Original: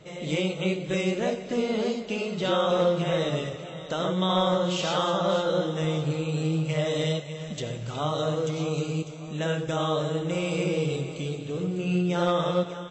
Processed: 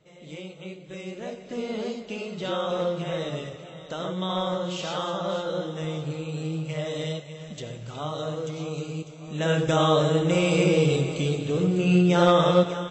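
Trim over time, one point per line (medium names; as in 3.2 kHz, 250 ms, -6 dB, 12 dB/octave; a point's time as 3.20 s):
0.89 s -12.5 dB
1.70 s -4 dB
9.16 s -4 dB
9.59 s +6 dB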